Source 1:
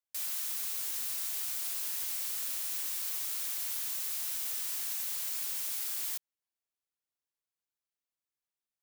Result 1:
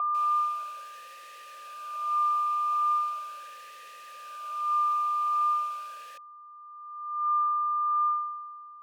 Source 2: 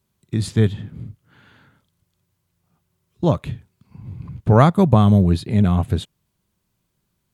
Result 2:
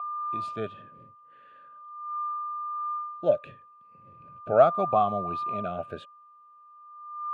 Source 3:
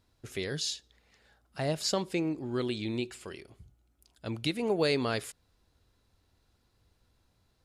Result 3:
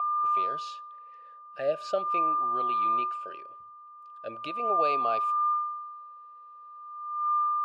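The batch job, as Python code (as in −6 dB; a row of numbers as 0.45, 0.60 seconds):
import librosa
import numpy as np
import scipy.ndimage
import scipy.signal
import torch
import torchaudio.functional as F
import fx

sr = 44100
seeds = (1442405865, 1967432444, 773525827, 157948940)

y = x + 10.0 ** (-26.0 / 20.0) * np.sin(2.0 * np.pi * 1200.0 * np.arange(len(x)) / sr)
y = fx.vowel_sweep(y, sr, vowels='a-e', hz=0.39)
y = y * 10.0 ** (-30 / 20.0) / np.sqrt(np.mean(np.square(y)))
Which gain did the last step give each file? +10.0, +4.0, +9.5 decibels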